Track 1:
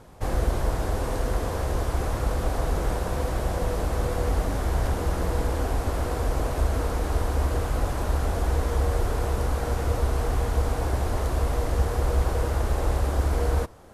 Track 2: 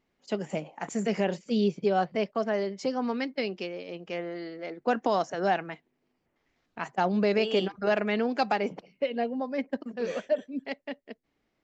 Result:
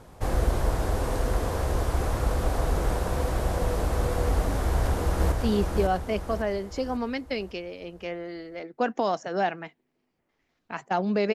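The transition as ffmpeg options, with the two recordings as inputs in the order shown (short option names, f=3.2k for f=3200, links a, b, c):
-filter_complex "[0:a]apad=whole_dur=11.34,atrim=end=11.34,atrim=end=5.322[a];[1:a]atrim=start=1.388:end=7.41[b];[a][b]acrossfade=d=0.004:c1=hsin:c2=hsin,asplit=2[c][d];[d]afade=t=in:st=4.64:d=0.01,afade=t=out:st=5.32:d=0.01,aecho=0:1:550|1100|1650|2200|2750|3300:0.668344|0.300755|0.13534|0.0609028|0.0274063|0.0123328[e];[c][e]amix=inputs=2:normalize=0"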